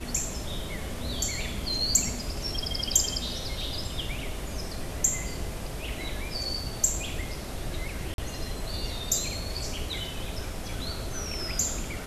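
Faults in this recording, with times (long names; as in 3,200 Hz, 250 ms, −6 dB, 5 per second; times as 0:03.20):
0:08.14–0:08.18: drop-out 42 ms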